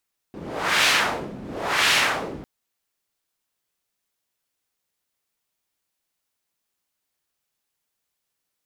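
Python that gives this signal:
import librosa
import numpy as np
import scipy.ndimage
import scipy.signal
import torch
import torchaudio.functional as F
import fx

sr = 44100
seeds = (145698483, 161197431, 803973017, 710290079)

y = fx.wind(sr, seeds[0], length_s=2.1, low_hz=220.0, high_hz=2700.0, q=1.1, gusts=2, swing_db=18.5)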